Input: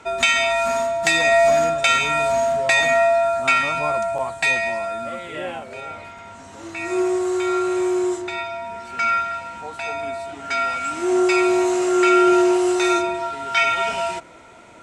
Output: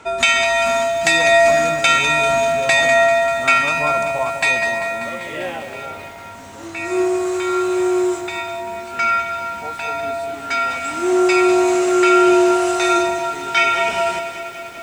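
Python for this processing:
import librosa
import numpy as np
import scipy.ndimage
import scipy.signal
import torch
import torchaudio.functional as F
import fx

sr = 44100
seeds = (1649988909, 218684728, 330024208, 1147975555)

y = x + 10.0 ** (-11.0 / 20.0) * np.pad(x, (int(203 * sr / 1000.0), 0))[:len(x)]
y = fx.echo_crushed(y, sr, ms=196, feedback_pct=80, bits=7, wet_db=-12.5)
y = y * librosa.db_to_amplitude(2.5)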